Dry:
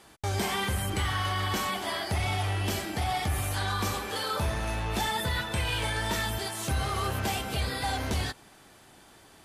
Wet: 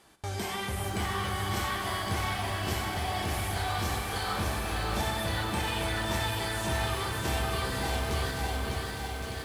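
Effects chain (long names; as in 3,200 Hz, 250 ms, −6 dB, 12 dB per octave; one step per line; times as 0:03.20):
delay that swaps between a low-pass and a high-pass 557 ms, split 1,800 Hz, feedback 63%, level −2.5 dB
four-comb reverb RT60 3.4 s, combs from 33 ms, DRR 6 dB
feedback echo at a low word length 603 ms, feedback 55%, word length 8 bits, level −4 dB
level −5 dB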